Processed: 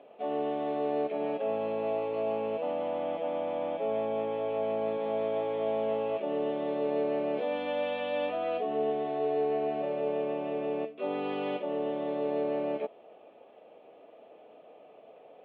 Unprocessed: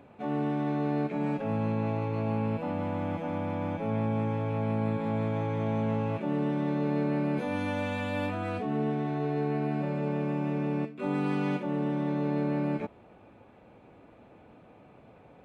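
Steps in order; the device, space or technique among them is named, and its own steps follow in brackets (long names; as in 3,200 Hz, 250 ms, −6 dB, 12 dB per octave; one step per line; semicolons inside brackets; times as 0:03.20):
phone earpiece (loudspeaker in its box 430–3,500 Hz, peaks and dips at 450 Hz +7 dB, 650 Hz +9 dB, 950 Hz −5 dB, 1,500 Hz −9 dB, 2,200 Hz −5 dB, 3,100 Hz +7 dB)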